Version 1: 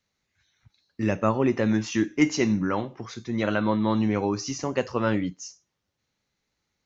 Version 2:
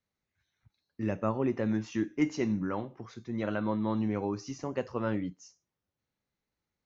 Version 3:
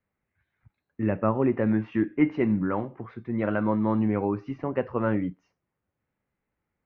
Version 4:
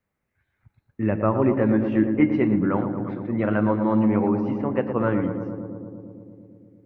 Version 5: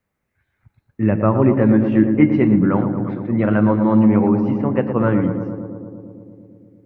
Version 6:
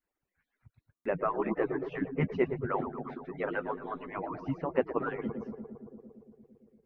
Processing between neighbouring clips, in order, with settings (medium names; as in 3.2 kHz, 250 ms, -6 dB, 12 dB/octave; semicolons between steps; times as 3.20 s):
treble shelf 2.1 kHz -8.5 dB; trim -6.5 dB
low-pass 2.4 kHz 24 dB/octave; trim +6 dB
filtered feedback delay 114 ms, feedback 82%, low-pass 1.5 kHz, level -7.5 dB; trim +2.5 dB
dynamic bell 150 Hz, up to +6 dB, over -34 dBFS, Q 1.1; trim +3.5 dB
harmonic-percussive separation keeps percussive; buffer glitch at 0.95 s, samples 512, times 8; trim -7 dB